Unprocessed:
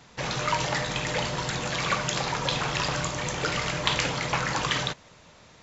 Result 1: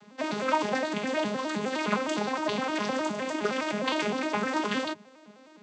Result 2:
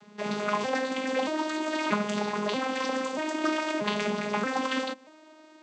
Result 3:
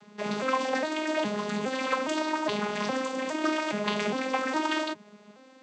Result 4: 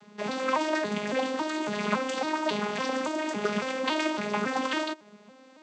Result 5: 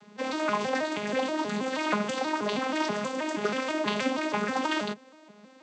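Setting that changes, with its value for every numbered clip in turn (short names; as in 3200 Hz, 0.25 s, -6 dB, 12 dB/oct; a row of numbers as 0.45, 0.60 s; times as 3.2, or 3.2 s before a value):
arpeggiated vocoder, a note every: 0.103, 0.633, 0.412, 0.278, 0.16 s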